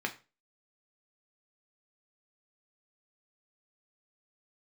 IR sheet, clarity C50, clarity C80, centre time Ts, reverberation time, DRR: 15.5 dB, 20.0 dB, 9 ms, 0.30 s, 3.0 dB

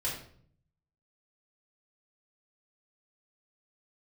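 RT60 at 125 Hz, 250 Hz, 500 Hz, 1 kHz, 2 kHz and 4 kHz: 1.1, 0.85, 0.65, 0.50, 0.45, 0.40 s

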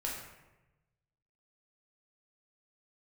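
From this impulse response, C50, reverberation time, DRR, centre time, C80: 2.5 dB, 1.0 s, -4.0 dB, 55 ms, 5.0 dB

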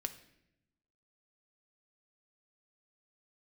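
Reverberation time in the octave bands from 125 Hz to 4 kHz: 1.3, 1.3, 0.95, 0.70, 0.80, 0.65 s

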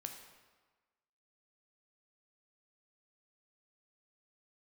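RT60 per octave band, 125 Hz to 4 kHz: 1.2, 1.2, 1.3, 1.4, 1.2, 1.0 s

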